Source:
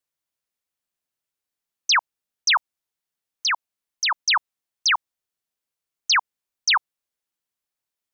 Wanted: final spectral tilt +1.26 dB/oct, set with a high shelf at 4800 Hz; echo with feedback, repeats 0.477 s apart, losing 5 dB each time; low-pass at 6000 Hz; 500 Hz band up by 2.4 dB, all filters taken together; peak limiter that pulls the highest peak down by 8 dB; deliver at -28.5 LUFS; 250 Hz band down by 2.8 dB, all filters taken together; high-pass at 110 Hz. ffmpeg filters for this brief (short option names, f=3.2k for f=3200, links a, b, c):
-af "highpass=110,lowpass=6k,equalizer=f=250:t=o:g=-4.5,equalizer=f=500:t=o:g=4.5,highshelf=f=4.8k:g=-4.5,alimiter=limit=-20.5dB:level=0:latency=1,aecho=1:1:477|954|1431|1908|2385|2862|3339:0.562|0.315|0.176|0.0988|0.0553|0.031|0.0173"